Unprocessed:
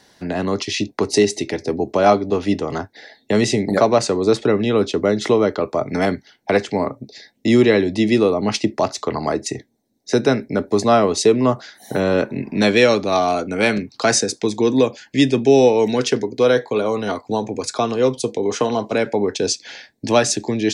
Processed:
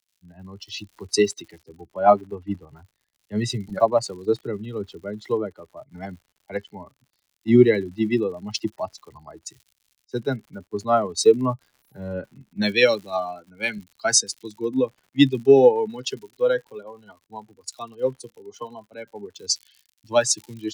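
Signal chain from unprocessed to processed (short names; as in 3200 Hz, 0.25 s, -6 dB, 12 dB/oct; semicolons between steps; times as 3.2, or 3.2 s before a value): per-bin expansion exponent 2; crackle 120/s -35 dBFS; three-band expander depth 70%; gain -3 dB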